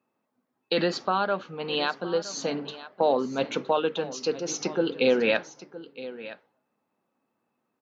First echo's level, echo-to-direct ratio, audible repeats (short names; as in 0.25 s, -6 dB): -16.0 dB, -16.0 dB, 1